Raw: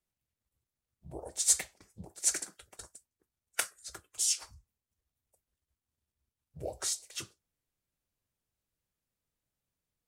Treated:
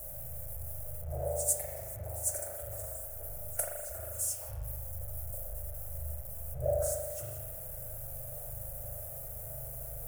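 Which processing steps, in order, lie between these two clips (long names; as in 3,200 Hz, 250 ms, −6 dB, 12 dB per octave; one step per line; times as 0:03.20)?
converter with a step at zero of −37 dBFS
drawn EQ curve 130 Hz 0 dB, 230 Hz −29 dB, 410 Hz −14 dB, 600 Hz +8 dB, 1,000 Hz −18 dB, 1,400 Hz −14 dB, 3,800 Hz −28 dB, 12,000 Hz +6 dB
spring reverb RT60 1.6 s, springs 39 ms, chirp 70 ms, DRR −2 dB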